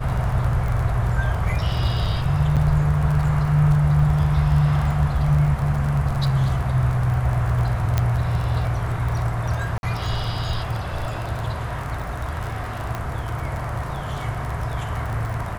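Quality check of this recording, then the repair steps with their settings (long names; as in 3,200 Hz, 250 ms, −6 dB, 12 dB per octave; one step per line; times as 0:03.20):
surface crackle 27 per second −26 dBFS
0:02.56–0:02.57: drop-out 7.2 ms
0:07.98: click −7 dBFS
0:09.78–0:09.83: drop-out 51 ms
0:12.95: click −14 dBFS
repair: click removal
repair the gap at 0:02.56, 7.2 ms
repair the gap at 0:09.78, 51 ms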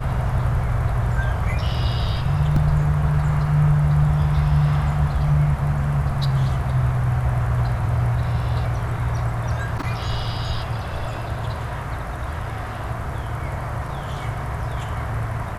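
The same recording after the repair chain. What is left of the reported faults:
none of them is left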